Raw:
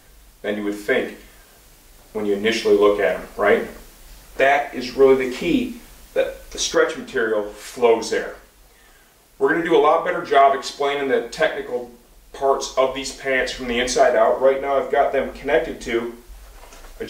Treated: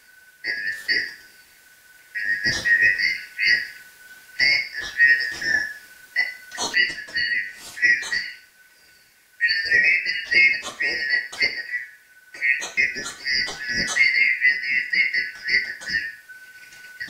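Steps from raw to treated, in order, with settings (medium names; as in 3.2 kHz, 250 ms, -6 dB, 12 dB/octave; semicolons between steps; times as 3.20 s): four frequency bands reordered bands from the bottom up 3142; trim -3 dB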